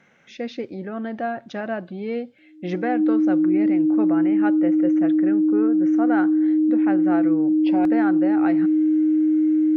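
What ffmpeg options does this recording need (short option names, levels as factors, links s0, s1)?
-af "bandreject=f=310:w=30"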